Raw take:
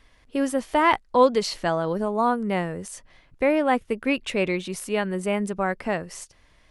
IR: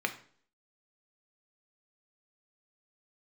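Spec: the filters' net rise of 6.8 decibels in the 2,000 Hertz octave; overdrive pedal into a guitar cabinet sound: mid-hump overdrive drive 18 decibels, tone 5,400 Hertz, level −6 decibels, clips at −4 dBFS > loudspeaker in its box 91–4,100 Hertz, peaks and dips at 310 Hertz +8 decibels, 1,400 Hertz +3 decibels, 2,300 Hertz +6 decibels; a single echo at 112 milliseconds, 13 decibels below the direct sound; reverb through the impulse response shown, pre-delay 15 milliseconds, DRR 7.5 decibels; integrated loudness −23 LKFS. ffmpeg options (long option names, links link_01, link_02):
-filter_complex "[0:a]equalizer=frequency=2000:width_type=o:gain=4,aecho=1:1:112:0.224,asplit=2[link_01][link_02];[1:a]atrim=start_sample=2205,adelay=15[link_03];[link_02][link_03]afir=irnorm=-1:irlink=0,volume=-14.5dB[link_04];[link_01][link_04]amix=inputs=2:normalize=0,asplit=2[link_05][link_06];[link_06]highpass=frequency=720:poles=1,volume=18dB,asoftclip=type=tanh:threshold=-4dB[link_07];[link_05][link_07]amix=inputs=2:normalize=0,lowpass=frequency=5400:poles=1,volume=-6dB,highpass=91,equalizer=frequency=310:width_type=q:width=4:gain=8,equalizer=frequency=1400:width_type=q:width=4:gain=3,equalizer=frequency=2300:width_type=q:width=4:gain=6,lowpass=frequency=4100:width=0.5412,lowpass=frequency=4100:width=1.3066,volume=-8.5dB"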